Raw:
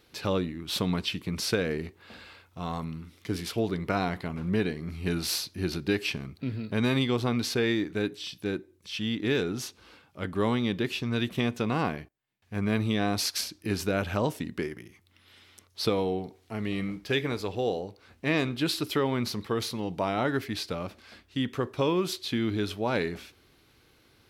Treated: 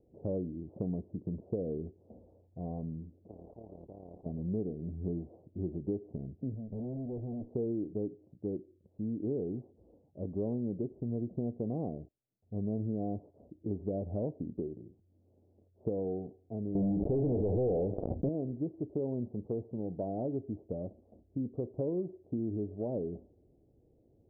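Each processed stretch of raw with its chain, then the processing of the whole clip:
0:03.28–0:04.26: amplitude modulation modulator 36 Hz, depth 40% + every bin compressed towards the loudest bin 10 to 1
0:06.54–0:07.49: Gaussian smoothing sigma 3.3 samples + tube saturation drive 33 dB, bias 0.45
0:16.75–0:18.29: running median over 15 samples + leveller curve on the samples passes 5 + background raised ahead of every attack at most 24 dB per second
whole clip: Butterworth low-pass 680 Hz 48 dB per octave; downward compressor 2 to 1, threshold −32 dBFS; level −2 dB

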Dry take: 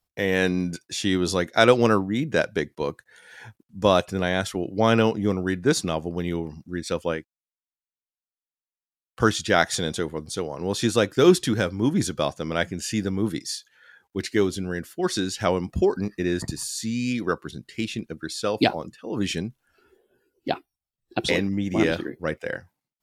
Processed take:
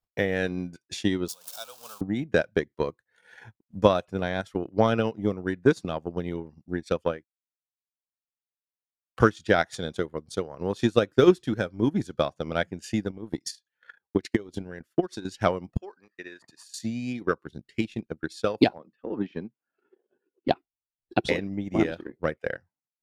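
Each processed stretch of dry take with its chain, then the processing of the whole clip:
0:01.28–0:02.01: converter with a step at zero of −18.5 dBFS + first difference + phaser with its sweep stopped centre 810 Hz, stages 4
0:13.10–0:15.25: downward compressor, threshold −28 dBFS + transient designer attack +10 dB, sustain −7 dB
0:15.77–0:16.74: high-pass filter 1,300 Hz + spectral tilt −3.5 dB per octave
0:18.78–0:20.48: de-essing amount 70% + high-pass filter 180 Hz 24 dB per octave + high-frequency loss of the air 270 metres
whole clip: transient designer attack +10 dB, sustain −10 dB; high-shelf EQ 3,800 Hz −8.5 dB; level −6.5 dB

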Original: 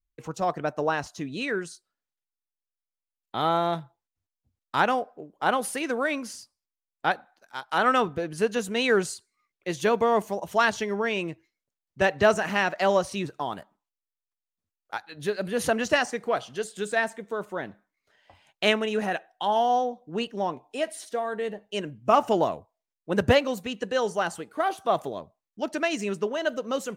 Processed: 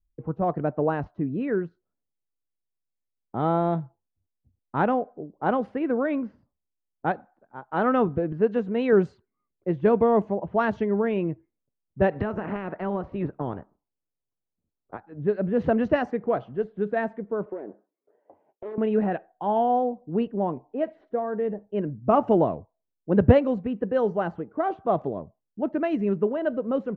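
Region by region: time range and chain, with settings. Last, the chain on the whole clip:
0:08.32–0:08.93: low-shelf EQ 130 Hz −10.5 dB + upward compression, threshold −32 dBFS
0:12.09–0:14.99: ceiling on every frequency bin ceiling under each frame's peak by 12 dB + downward compressor 10 to 1, threshold −25 dBFS
0:17.46–0:18.78: phase distortion by the signal itself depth 0.9 ms + high-pass with resonance 400 Hz, resonance Q 2.6 + downward compressor, threshold −33 dBFS
whole clip: low-pass that shuts in the quiet parts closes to 840 Hz, open at −18 dBFS; low-pass filter 2,200 Hz 12 dB per octave; tilt shelving filter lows +8.5 dB, about 720 Hz

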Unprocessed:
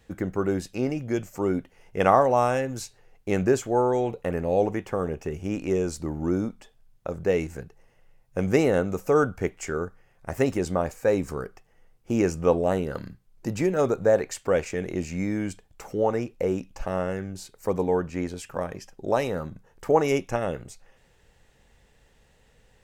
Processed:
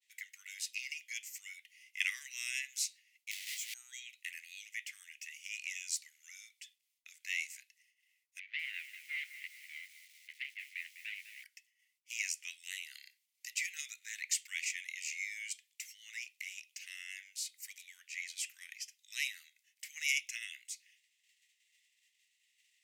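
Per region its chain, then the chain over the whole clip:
0:03.31–0:03.74: each half-wave held at its own peak + downward compressor 10 to 1, threshold −28 dBFS + micro pitch shift up and down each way 15 cents
0:08.39–0:11.44: running median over 41 samples + low-pass filter 2,800 Hz 24 dB per octave + feedback echo at a low word length 201 ms, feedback 55%, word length 8 bits, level −12 dB
whole clip: downward expander −52 dBFS; Chebyshev high-pass filter 2,000 Hz, order 6; level +3 dB

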